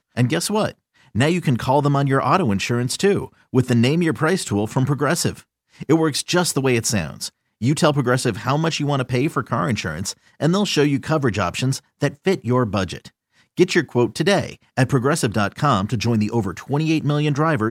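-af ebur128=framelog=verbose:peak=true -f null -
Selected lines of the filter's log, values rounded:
Integrated loudness:
  I:         -20.1 LUFS
  Threshold: -30.3 LUFS
Loudness range:
  LRA:         2.2 LU
  Threshold: -40.4 LUFS
  LRA low:   -21.2 LUFS
  LRA high:  -19.1 LUFS
True peak:
  Peak:       -2.4 dBFS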